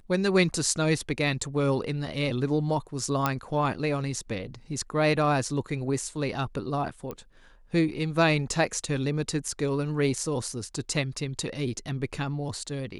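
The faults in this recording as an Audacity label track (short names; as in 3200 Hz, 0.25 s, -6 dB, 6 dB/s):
3.260000	3.260000	pop -10 dBFS
7.110000	7.110000	pop -22 dBFS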